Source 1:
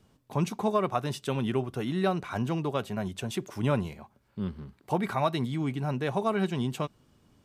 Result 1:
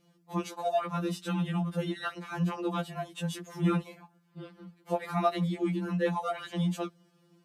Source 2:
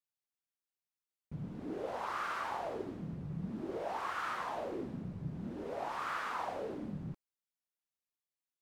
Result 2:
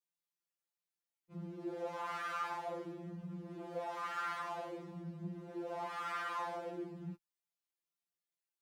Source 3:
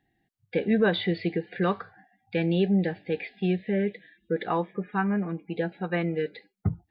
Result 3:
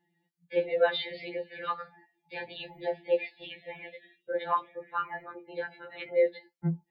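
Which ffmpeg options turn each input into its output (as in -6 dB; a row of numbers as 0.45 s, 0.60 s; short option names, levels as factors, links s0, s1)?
-af "afreqshift=49,afftfilt=real='re*2.83*eq(mod(b,8),0)':imag='im*2.83*eq(mod(b,8),0)':win_size=2048:overlap=0.75"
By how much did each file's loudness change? -1.5 LU, -2.5 LU, -4.5 LU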